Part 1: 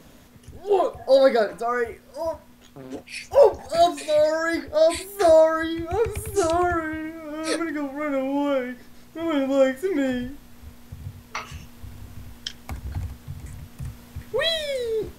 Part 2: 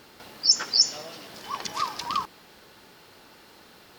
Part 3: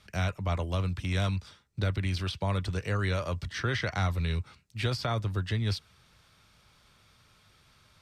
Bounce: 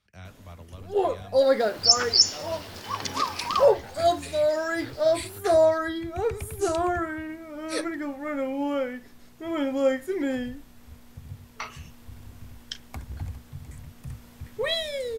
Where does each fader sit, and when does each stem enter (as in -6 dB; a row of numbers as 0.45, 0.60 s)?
-4.0, +1.5, -15.0 dB; 0.25, 1.40, 0.00 s